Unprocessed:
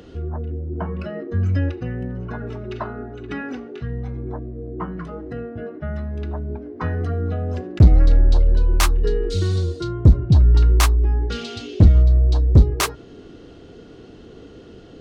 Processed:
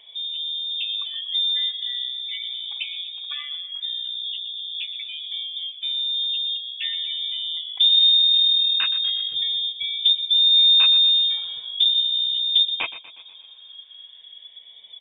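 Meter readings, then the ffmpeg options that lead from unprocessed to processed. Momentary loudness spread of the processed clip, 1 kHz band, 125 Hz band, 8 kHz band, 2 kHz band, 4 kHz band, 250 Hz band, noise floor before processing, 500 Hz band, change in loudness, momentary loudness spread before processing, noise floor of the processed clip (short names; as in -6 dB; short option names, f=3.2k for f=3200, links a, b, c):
16 LU, under -10 dB, under -40 dB, under -40 dB, -2.0 dB, +21.0 dB, under -35 dB, -43 dBFS, under -25 dB, +1.0 dB, 17 LU, -46 dBFS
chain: -af "afftfilt=real='re*pow(10,9/40*sin(2*PI*(0.84*log(max(b,1)*sr/1024/100)/log(2)-(-0.4)*(pts-256)/sr)))':imag='im*pow(10,9/40*sin(2*PI*(0.84*log(max(b,1)*sr/1024/100)/log(2)-(-0.4)*(pts-256)/sr)))':win_size=1024:overlap=0.75,afftdn=nr=14:nf=-26,asoftclip=type=hard:threshold=-6dB,acompressor=threshold=-47dB:ratio=1.5,aecho=1:1:121|242|363|484|605:0.178|0.0942|0.05|0.0265|0.014,lowpass=f=3.1k:t=q:w=0.5098,lowpass=f=3.1k:t=q:w=0.6013,lowpass=f=3.1k:t=q:w=0.9,lowpass=f=3.1k:t=q:w=2.563,afreqshift=-3700,volume=6dB"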